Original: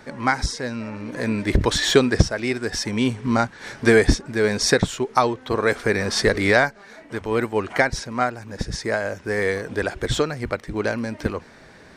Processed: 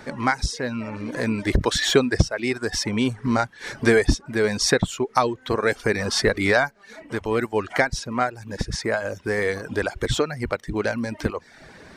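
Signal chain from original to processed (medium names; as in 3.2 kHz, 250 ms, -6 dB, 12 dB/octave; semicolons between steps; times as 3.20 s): reverb removal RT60 0.54 s; in parallel at +1 dB: compression, threshold -27 dBFS, peak gain reduction 17.5 dB; on the sum: trim -3.5 dB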